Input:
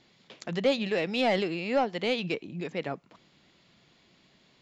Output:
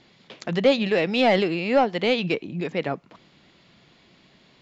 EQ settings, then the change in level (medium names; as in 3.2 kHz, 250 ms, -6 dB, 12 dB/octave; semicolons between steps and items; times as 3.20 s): distance through air 63 m; +7.0 dB